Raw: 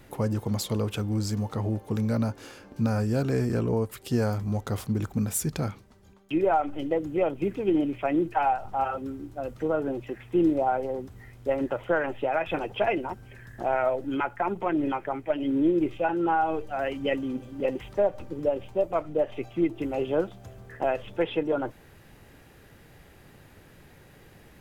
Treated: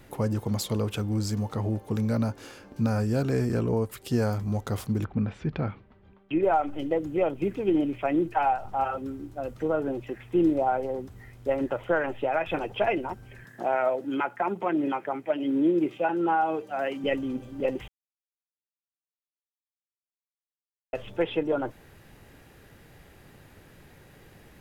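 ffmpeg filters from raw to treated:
-filter_complex "[0:a]asettb=1/sr,asplit=3[s0][s1][s2];[s0]atrim=end=5.044[s3];[s1]atrim=start=5.04:end=6.43,asetpts=PTS-STARTPTS,afade=t=in:d=0.004:c=qsin,afade=t=out:st=1.386:d=0.004:c=qsin,lowpass=f=3100:w=0.5412,lowpass=f=3100:w=1.3066[s4];[s2]atrim=start=6.426[s5];[s3][s4]acrossfade=d=0.004:c1=hsin:c2=qsin[s6];[s6][s5]acrossfade=d=0.004:c1=qsin:c2=hsin,asettb=1/sr,asplit=3[s7][s8][s9];[s7]atrim=end=13.444[s10];[s8]atrim=start=13.44:end=17.04,asetpts=PTS-STARTPTS,afade=t=in:d=0.004:c=qsin,afade=t=out:st=3.596:d=0.004:c=qsin,highpass=f=150:w=0.5412,highpass=f=150:w=1.3066[s11];[s9]atrim=start=17.036[s12];[s10][s11]acrossfade=d=0.004:c1=hsin:c2=qsin[s13];[s13][s12]acrossfade=d=0.004:c1=qsin:c2=hsin,asplit=3[s14][s15][s16];[s14]atrim=end=17.88,asetpts=PTS-STARTPTS,afade=t=out:st=17.876:d=0.004:c=hsin[s17];[s15]atrim=start=17.88:end=20.93,asetpts=PTS-STARTPTS,volume=0[s18];[s16]atrim=start=20.93,asetpts=PTS-STARTPTS,afade=t=in:d=0.004:c=hsin[s19];[s17][s18][s19]concat=n=3:v=0:a=1"

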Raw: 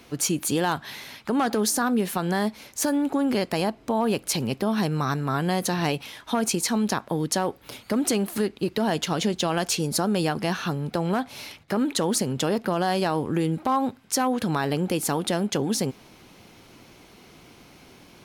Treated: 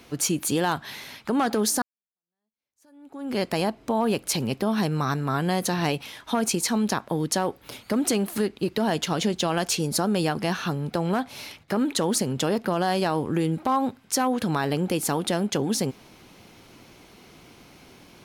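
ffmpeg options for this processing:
-filter_complex "[0:a]asplit=2[s0][s1];[s0]atrim=end=1.82,asetpts=PTS-STARTPTS,afade=t=out:st=1.816:d=0.004:c=hsin[s2];[s1]atrim=start=1.82,asetpts=PTS-STARTPTS,afade=t=in:d=1.58:c=exp[s3];[s2][s3]concat=n=2:v=0:a=1"

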